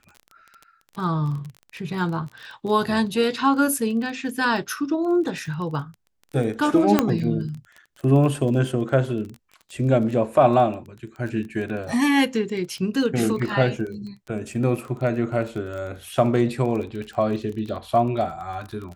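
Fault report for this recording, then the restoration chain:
crackle 21/s -31 dBFS
6.99 pop -3 dBFS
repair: de-click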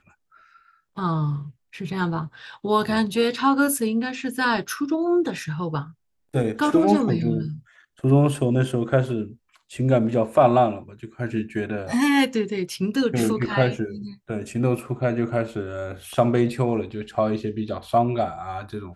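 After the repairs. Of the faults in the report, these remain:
none

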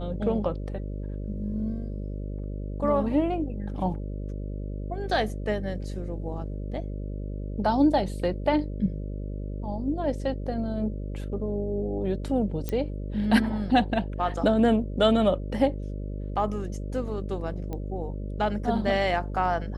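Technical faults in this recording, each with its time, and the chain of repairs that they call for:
buzz 50 Hz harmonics 12 -33 dBFS
12.69 pop -16 dBFS
17.73 pop -22 dBFS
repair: de-click; de-hum 50 Hz, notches 12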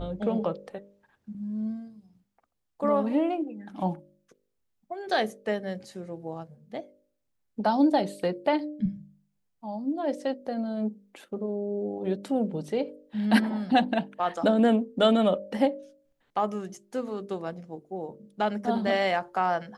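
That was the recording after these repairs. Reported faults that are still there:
none

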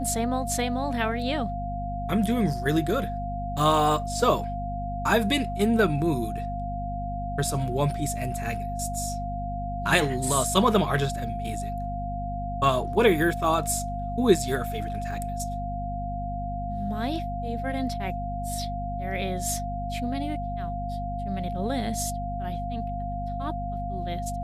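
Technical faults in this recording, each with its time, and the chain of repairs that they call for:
hum 50 Hz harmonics 5 -33 dBFS
tone 700 Hz -32 dBFS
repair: de-hum 50 Hz, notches 5; notch 700 Hz, Q 30

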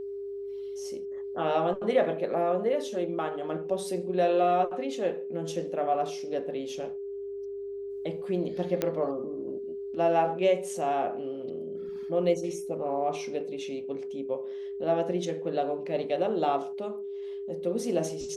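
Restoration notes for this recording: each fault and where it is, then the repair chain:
tone 400 Hz -34 dBFS
8.82 pop -13 dBFS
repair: de-click; notch 400 Hz, Q 30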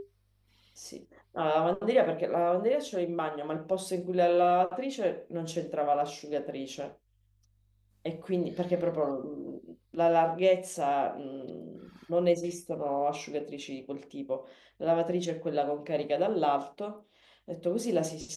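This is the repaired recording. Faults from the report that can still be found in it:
none

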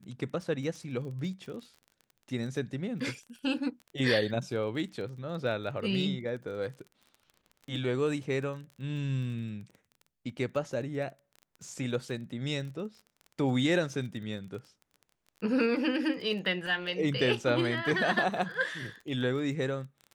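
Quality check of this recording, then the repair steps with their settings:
crackle 22/s -40 dBFS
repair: de-click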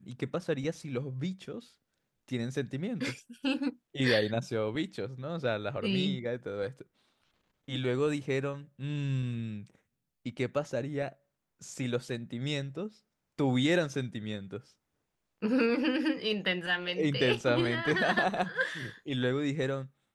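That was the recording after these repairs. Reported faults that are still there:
none

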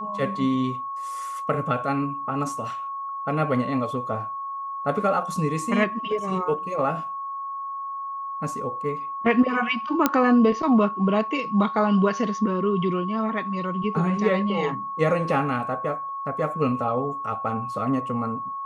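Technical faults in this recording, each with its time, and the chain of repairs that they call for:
tone 1100 Hz -29 dBFS
10.06 pop -4 dBFS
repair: de-click; notch 1100 Hz, Q 30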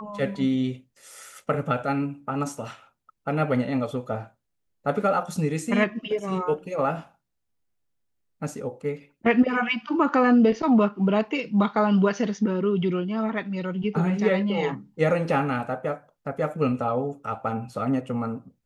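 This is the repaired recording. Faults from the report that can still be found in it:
none

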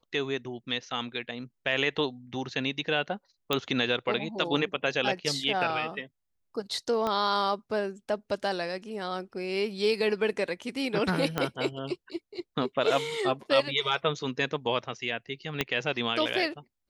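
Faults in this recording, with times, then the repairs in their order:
3.53 pop -11 dBFS
7.07 pop -17 dBFS
11.38 pop -12 dBFS
15.61 pop -11 dBFS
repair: de-click

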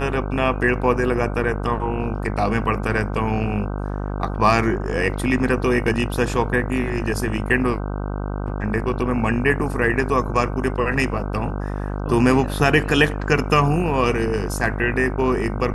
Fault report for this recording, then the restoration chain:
buzz 50 Hz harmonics 31 -26 dBFS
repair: de-hum 50 Hz, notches 31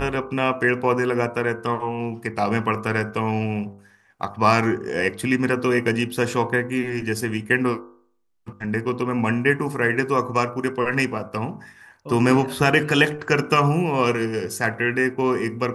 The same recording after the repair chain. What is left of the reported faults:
none

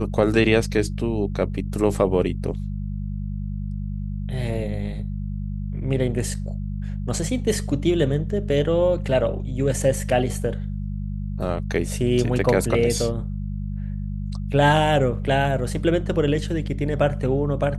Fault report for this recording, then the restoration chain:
hum 50 Hz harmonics 4 -28 dBFS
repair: de-hum 50 Hz, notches 4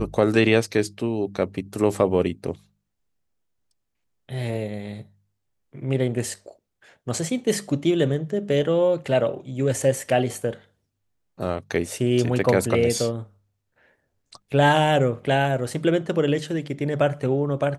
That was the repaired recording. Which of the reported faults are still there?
none

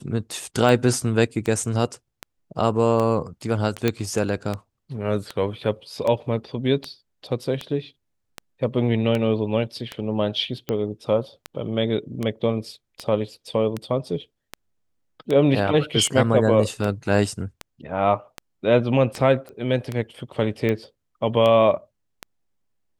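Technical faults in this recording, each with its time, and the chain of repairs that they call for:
tick 78 rpm
3.88 pop -7 dBFS
19.49 pop -26 dBFS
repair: de-click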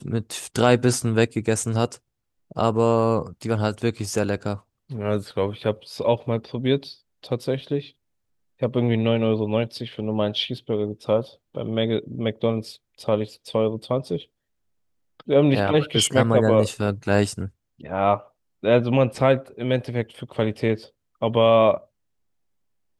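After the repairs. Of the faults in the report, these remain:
none

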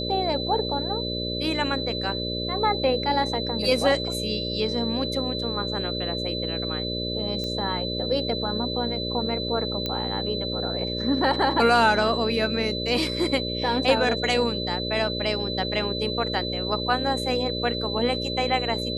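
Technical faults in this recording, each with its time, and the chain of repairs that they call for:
buzz 60 Hz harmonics 10 -31 dBFS
tone 4000 Hz -30 dBFS
7.44 pop -18 dBFS
9.86 pop -13 dBFS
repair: de-click; de-hum 60 Hz, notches 10; notch 4000 Hz, Q 30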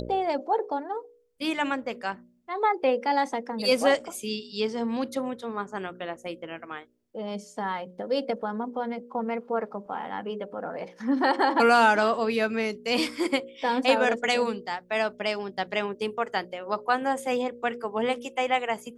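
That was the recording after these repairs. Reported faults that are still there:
none

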